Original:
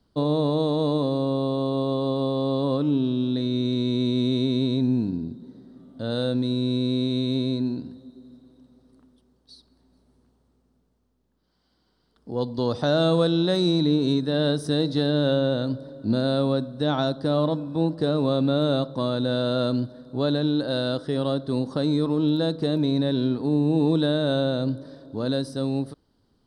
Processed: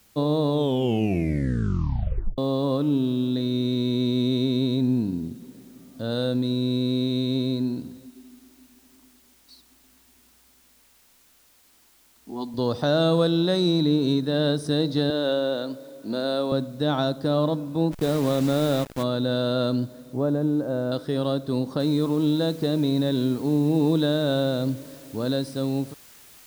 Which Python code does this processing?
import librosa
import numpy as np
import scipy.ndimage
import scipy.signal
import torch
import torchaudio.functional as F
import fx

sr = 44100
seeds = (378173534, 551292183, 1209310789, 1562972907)

y = fx.resample_bad(x, sr, factor=2, down='none', up='filtered', at=(4.05, 4.49))
y = fx.fixed_phaser(y, sr, hz=510.0, stages=6, at=(8.06, 12.54))
y = fx.highpass(y, sr, hz=330.0, slope=12, at=(15.1, 16.52))
y = fx.delta_hold(y, sr, step_db=-30.5, at=(17.91, 19.02), fade=0.02)
y = fx.lowpass(y, sr, hz=1100.0, slope=12, at=(20.13, 20.92))
y = fx.noise_floor_step(y, sr, seeds[0], at_s=21.8, before_db=-59, after_db=-50, tilt_db=0.0)
y = fx.edit(y, sr, fx.tape_stop(start_s=0.49, length_s=1.89), tone=tone)